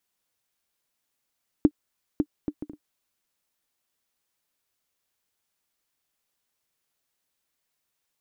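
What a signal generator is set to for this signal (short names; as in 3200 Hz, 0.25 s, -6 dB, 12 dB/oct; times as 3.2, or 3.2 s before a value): bouncing ball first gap 0.55 s, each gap 0.51, 298 Hz, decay 61 ms -6 dBFS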